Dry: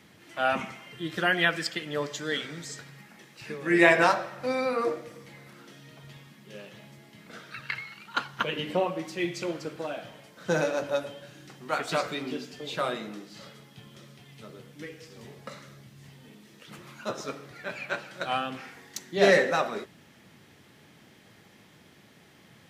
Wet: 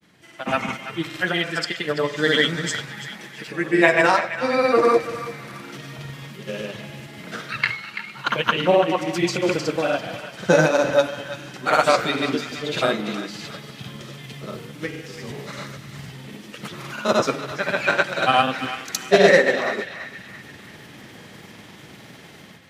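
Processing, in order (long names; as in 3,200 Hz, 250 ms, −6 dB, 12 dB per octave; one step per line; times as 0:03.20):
automatic gain control gain up to 14 dB
granular cloud, grains 20 per second, pitch spread up and down by 0 semitones
feedback echo with a band-pass in the loop 335 ms, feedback 49%, band-pass 2,400 Hz, level −9.5 dB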